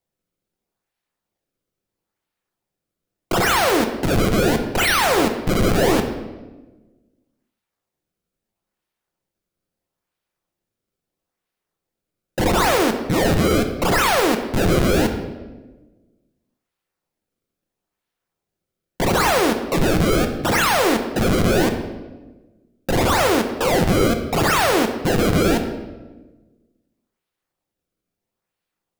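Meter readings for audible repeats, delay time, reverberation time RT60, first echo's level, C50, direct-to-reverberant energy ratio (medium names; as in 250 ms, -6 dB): no echo, no echo, 1.2 s, no echo, 8.0 dB, 4.5 dB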